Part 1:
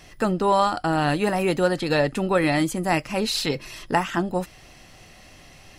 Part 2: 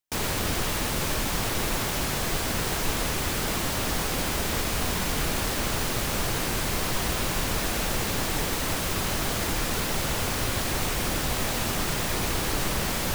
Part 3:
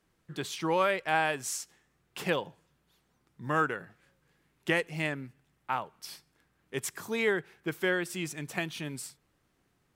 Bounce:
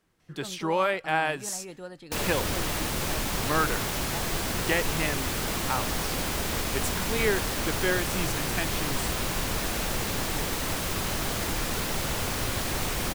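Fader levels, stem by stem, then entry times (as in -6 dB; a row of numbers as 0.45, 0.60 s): -20.0, -2.0, +1.5 dB; 0.20, 2.00, 0.00 s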